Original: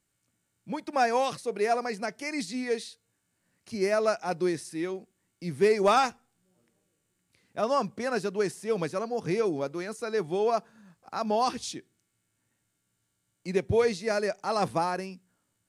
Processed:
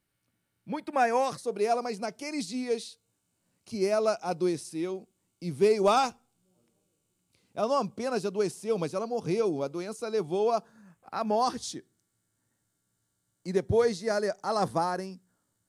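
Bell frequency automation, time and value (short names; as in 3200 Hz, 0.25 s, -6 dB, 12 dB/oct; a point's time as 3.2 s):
bell -11.5 dB 0.52 oct
0.76 s 7300 Hz
1.61 s 1800 Hz
10.56 s 1800 Hz
11.17 s 7200 Hz
11.4 s 2500 Hz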